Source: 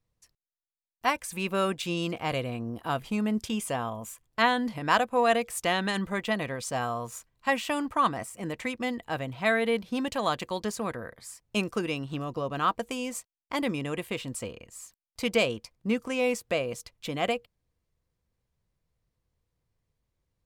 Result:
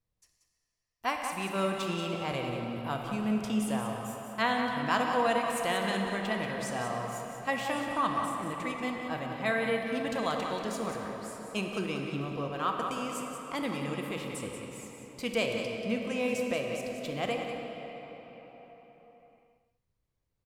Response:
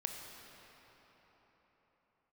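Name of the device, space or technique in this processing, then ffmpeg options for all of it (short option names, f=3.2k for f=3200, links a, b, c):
cave: -filter_complex "[0:a]aecho=1:1:184:0.376[a];[1:a]atrim=start_sample=2205[b];[a][b]afir=irnorm=-1:irlink=0,volume=-3.5dB"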